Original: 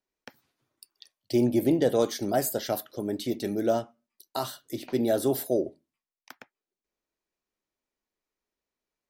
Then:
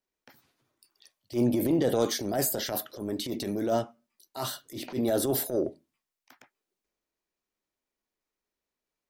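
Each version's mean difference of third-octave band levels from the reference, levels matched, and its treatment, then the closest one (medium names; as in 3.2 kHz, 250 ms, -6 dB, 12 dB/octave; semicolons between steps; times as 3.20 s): 4.0 dB: transient shaper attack -11 dB, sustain +5 dB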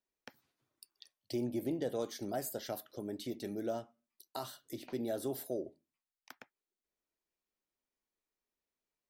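2.0 dB: compression 1.5:1, threshold -40 dBFS, peak gain reduction 8 dB; trim -5.5 dB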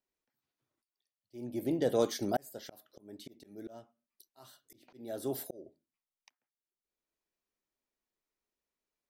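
8.0 dB: slow attack 730 ms; trim -4 dB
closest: second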